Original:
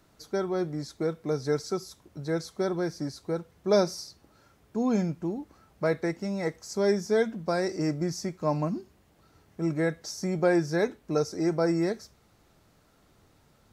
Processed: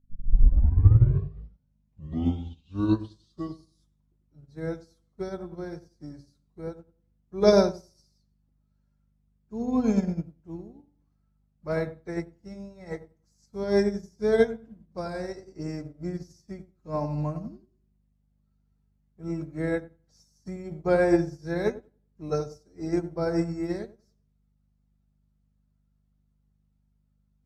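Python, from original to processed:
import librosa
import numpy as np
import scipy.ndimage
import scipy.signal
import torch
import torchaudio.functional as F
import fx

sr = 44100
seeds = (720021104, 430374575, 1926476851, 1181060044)

y = fx.tape_start_head(x, sr, length_s=2.02)
y = fx.low_shelf(y, sr, hz=130.0, db=9.0)
y = fx.add_hum(y, sr, base_hz=50, snr_db=13)
y = fx.stretch_vocoder_free(y, sr, factor=2.0)
y = fx.echo_wet_lowpass(y, sr, ms=94, feedback_pct=36, hz=1100.0, wet_db=-6.5)
y = fx.upward_expand(y, sr, threshold_db=-38.0, expansion=2.5)
y = y * 10.0 ** (6.0 / 20.0)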